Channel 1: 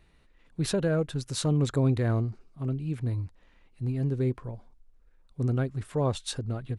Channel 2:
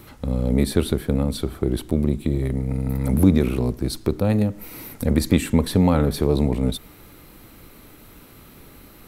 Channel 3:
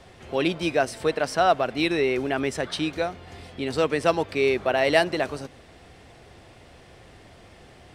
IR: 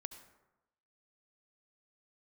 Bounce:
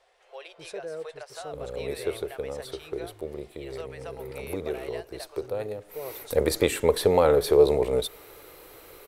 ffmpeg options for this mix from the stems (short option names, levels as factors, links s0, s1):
-filter_complex "[0:a]volume=0.224[s0];[1:a]adelay=1300,volume=0.944,afade=t=in:st=5.83:d=0.54:silence=0.298538[s1];[2:a]highpass=f=570:w=0.5412,highpass=f=570:w=1.3066,acompressor=threshold=0.0447:ratio=6,volume=0.2[s2];[s0][s1][s2]amix=inputs=3:normalize=0,lowshelf=f=320:t=q:w=3:g=-10.5"